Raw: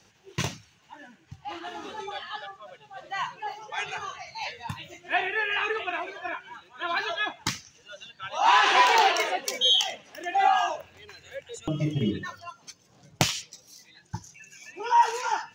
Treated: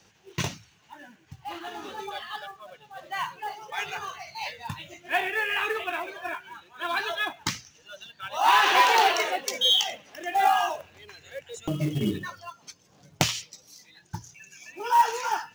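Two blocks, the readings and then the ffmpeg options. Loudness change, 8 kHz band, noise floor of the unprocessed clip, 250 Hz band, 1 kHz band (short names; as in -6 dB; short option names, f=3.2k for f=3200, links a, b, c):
0.0 dB, +0.5 dB, -61 dBFS, 0.0 dB, 0.0 dB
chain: -af "acrusher=bits=5:mode=log:mix=0:aa=0.000001,bandreject=f=60:t=h:w=6,bandreject=f=120:t=h:w=6"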